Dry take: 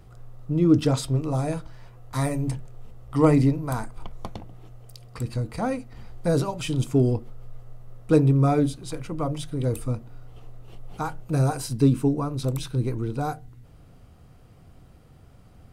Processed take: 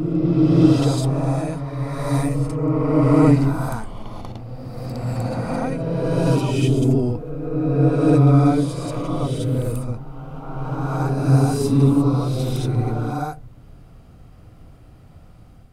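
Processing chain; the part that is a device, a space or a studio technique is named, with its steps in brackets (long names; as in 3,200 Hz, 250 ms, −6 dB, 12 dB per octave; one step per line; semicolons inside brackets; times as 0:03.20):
reverse reverb (reversed playback; convolution reverb RT60 2.8 s, pre-delay 38 ms, DRR −4.5 dB; reversed playback)
level −1.5 dB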